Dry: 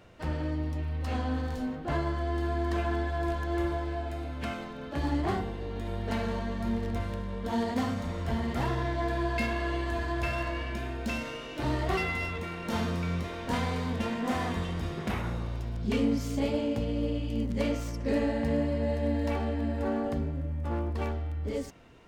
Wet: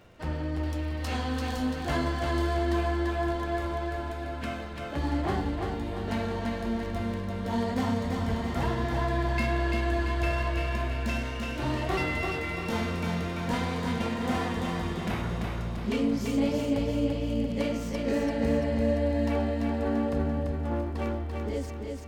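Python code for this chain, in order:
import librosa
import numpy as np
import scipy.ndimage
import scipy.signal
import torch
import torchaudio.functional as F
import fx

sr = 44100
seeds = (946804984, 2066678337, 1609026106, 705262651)

y = fx.high_shelf(x, sr, hz=2100.0, db=9.5, at=(0.63, 2.57))
y = fx.dmg_crackle(y, sr, seeds[0], per_s=96.0, level_db=-56.0)
y = fx.echo_feedback(y, sr, ms=340, feedback_pct=50, wet_db=-4)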